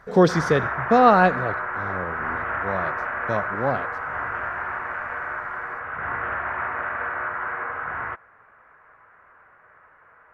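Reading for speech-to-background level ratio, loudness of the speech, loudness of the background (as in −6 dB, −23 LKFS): 6.5 dB, −21.5 LKFS, −28.0 LKFS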